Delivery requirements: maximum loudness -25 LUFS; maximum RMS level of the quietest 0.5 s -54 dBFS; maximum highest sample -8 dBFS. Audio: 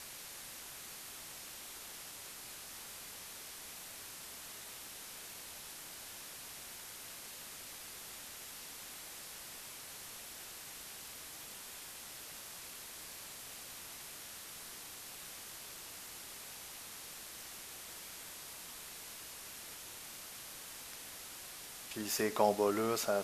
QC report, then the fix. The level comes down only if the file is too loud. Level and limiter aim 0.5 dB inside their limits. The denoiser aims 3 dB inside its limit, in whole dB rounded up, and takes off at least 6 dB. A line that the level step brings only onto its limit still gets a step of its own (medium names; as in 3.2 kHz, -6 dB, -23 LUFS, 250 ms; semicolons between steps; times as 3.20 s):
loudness -43.0 LUFS: pass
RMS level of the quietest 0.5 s -49 dBFS: fail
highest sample -15.5 dBFS: pass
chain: noise reduction 8 dB, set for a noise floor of -49 dBFS